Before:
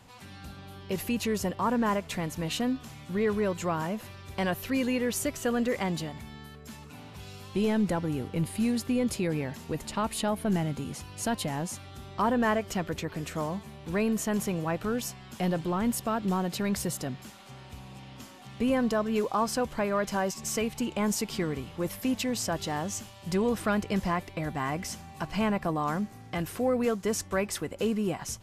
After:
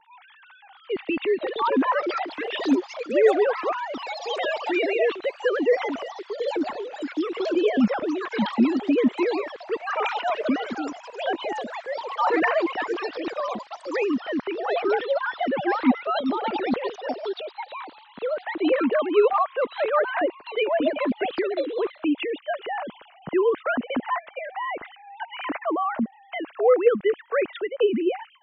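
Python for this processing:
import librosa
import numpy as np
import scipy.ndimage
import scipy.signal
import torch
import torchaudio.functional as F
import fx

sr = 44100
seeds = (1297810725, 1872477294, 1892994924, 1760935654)

y = fx.sine_speech(x, sr)
y = fx.wow_flutter(y, sr, seeds[0], rate_hz=2.1, depth_cents=16.0)
y = fx.echo_pitch(y, sr, ms=741, semitones=5, count=3, db_per_echo=-6.0)
y = y * 10.0 ** (4.5 / 20.0)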